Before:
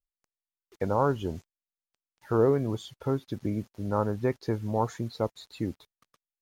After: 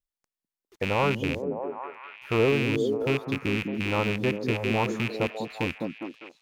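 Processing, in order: rattle on loud lows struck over -32 dBFS, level -18 dBFS; repeats whose band climbs or falls 202 ms, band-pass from 220 Hz, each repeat 0.7 oct, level 0 dB

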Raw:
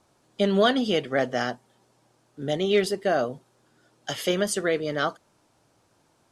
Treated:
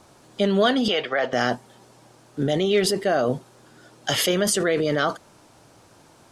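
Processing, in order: 0.88–1.33 s: three-band isolator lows -18 dB, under 520 Hz, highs -21 dB, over 4.8 kHz; in parallel at +2.5 dB: compressor with a negative ratio -33 dBFS, ratio -1

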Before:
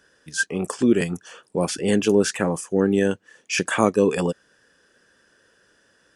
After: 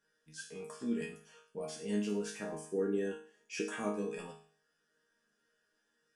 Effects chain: 2.52–3.75 s: peaking EQ 350 Hz +14.5 dB 0.84 oct; chord resonator D#3 sus4, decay 0.49 s

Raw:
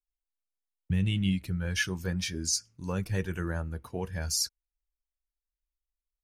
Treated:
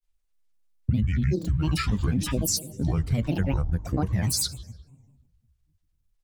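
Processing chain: in parallel at -2 dB: peak limiter -24.5 dBFS, peak gain reduction 8.5 dB; on the sum: tone controls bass +10 dB, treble +1 dB; reverberation RT60 1.3 s, pre-delay 7 ms, DRR 13.5 dB; granulator 100 ms, spray 12 ms, pitch spread up and down by 12 st; compression, threshold -24 dBFS, peak gain reduction 12 dB; trim +3 dB

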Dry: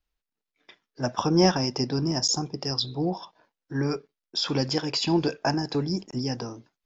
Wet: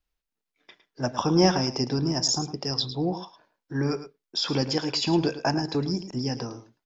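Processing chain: delay 108 ms -12.5 dB

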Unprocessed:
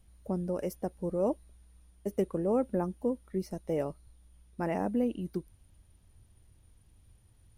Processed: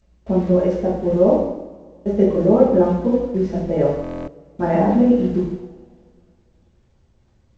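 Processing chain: one-bit delta coder 64 kbps, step -44 dBFS; gate with hold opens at -37 dBFS; low-pass 1.1 kHz 6 dB/octave; two-slope reverb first 0.79 s, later 2.2 s, from -18 dB, DRR -8 dB; buffer glitch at 4.02 s, samples 1024, times 10; trim +7 dB; G.722 64 kbps 16 kHz

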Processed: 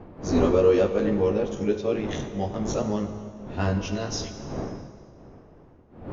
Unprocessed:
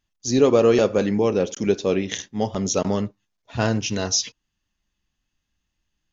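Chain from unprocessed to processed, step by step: short-time spectra conjugated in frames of 39 ms; wind noise 410 Hz -34 dBFS; low-pass 2.5 kHz 6 dB/octave; plate-style reverb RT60 2.2 s, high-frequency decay 0.85×, DRR 7.5 dB; trim -1.5 dB

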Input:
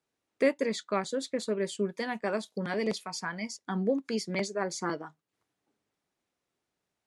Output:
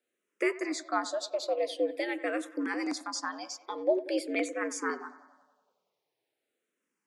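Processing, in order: frequency shift +97 Hz; feedback echo behind a low-pass 93 ms, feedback 61%, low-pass 2.6 kHz, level -16 dB; barber-pole phaser -0.46 Hz; trim +2.5 dB

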